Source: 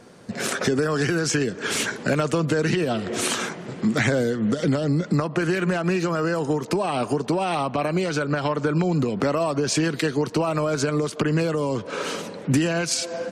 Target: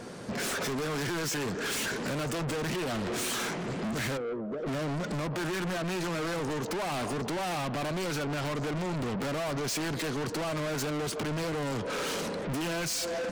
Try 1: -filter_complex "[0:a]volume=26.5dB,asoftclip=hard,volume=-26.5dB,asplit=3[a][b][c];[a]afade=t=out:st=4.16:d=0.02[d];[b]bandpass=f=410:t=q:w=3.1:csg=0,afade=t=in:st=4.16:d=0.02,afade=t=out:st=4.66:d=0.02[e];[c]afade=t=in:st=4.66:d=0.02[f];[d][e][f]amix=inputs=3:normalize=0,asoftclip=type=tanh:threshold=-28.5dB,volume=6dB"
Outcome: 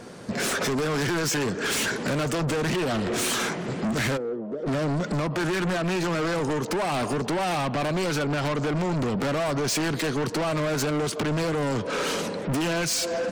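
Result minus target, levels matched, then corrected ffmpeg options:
soft clip: distortion -9 dB
-filter_complex "[0:a]volume=26.5dB,asoftclip=hard,volume=-26.5dB,asplit=3[a][b][c];[a]afade=t=out:st=4.16:d=0.02[d];[b]bandpass=f=410:t=q:w=3.1:csg=0,afade=t=in:st=4.16:d=0.02,afade=t=out:st=4.66:d=0.02[e];[c]afade=t=in:st=4.66:d=0.02[f];[d][e][f]amix=inputs=3:normalize=0,asoftclip=type=tanh:threshold=-37dB,volume=6dB"

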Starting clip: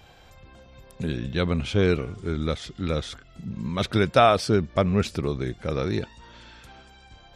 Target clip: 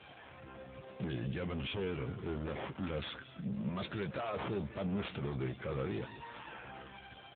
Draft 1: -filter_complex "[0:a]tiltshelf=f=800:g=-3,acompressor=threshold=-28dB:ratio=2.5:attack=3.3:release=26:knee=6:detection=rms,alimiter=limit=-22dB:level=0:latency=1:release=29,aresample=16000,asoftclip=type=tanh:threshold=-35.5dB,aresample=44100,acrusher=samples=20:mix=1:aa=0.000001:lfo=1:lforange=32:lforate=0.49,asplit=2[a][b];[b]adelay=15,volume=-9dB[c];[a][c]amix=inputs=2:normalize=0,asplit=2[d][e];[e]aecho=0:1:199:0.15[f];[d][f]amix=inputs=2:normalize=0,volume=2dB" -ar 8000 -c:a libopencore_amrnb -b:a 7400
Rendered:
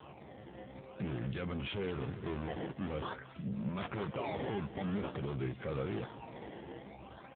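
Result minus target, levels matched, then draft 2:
decimation with a swept rate: distortion +5 dB
-filter_complex "[0:a]tiltshelf=f=800:g=-3,acompressor=threshold=-28dB:ratio=2.5:attack=3.3:release=26:knee=6:detection=rms,alimiter=limit=-22dB:level=0:latency=1:release=29,aresample=16000,asoftclip=type=tanh:threshold=-35.5dB,aresample=44100,acrusher=samples=6:mix=1:aa=0.000001:lfo=1:lforange=9.6:lforate=0.49,asplit=2[a][b];[b]adelay=15,volume=-9dB[c];[a][c]amix=inputs=2:normalize=0,asplit=2[d][e];[e]aecho=0:1:199:0.15[f];[d][f]amix=inputs=2:normalize=0,volume=2dB" -ar 8000 -c:a libopencore_amrnb -b:a 7400

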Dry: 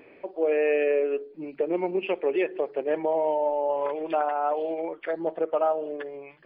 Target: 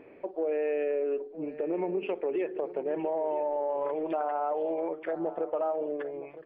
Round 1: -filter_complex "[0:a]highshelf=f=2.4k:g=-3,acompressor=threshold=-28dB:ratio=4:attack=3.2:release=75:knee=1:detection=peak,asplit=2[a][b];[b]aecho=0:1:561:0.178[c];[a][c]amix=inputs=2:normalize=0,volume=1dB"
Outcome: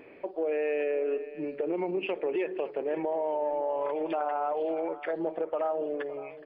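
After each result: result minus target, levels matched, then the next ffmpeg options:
echo 0.402 s early; 4000 Hz band +6.5 dB
-filter_complex "[0:a]highshelf=f=2.4k:g=-3,acompressor=threshold=-28dB:ratio=4:attack=3.2:release=75:knee=1:detection=peak,asplit=2[a][b];[b]aecho=0:1:963:0.178[c];[a][c]amix=inputs=2:normalize=0,volume=1dB"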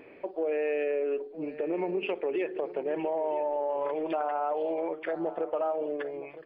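4000 Hz band +6.5 dB
-filter_complex "[0:a]highshelf=f=2.4k:g=-15,acompressor=threshold=-28dB:ratio=4:attack=3.2:release=75:knee=1:detection=peak,asplit=2[a][b];[b]aecho=0:1:963:0.178[c];[a][c]amix=inputs=2:normalize=0,volume=1dB"

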